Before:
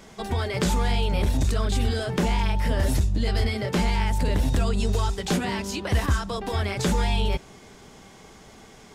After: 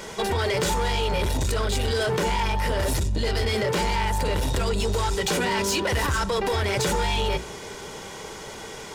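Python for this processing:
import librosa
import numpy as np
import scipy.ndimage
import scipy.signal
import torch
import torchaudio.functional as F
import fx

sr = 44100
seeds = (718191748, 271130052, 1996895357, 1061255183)

p1 = fx.low_shelf(x, sr, hz=110.0, db=-11.0)
p2 = fx.hum_notches(p1, sr, base_hz=60, count=7)
p3 = p2 + 0.46 * np.pad(p2, (int(2.1 * sr / 1000.0), 0))[:len(p2)]
p4 = fx.over_compress(p3, sr, threshold_db=-32.0, ratio=-1.0)
p5 = p3 + (p4 * 10.0 ** (-0.5 / 20.0))
p6 = 10.0 ** (-22.0 / 20.0) * np.tanh(p5 / 10.0 ** (-22.0 / 20.0))
y = p6 * 10.0 ** (3.0 / 20.0)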